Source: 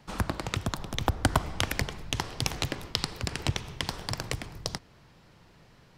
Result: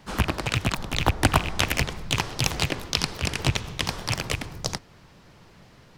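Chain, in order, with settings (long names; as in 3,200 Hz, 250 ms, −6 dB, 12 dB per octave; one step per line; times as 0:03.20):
loose part that buzzes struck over −32 dBFS, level −19 dBFS
pitch-shifted copies added +3 semitones −5 dB
level +4 dB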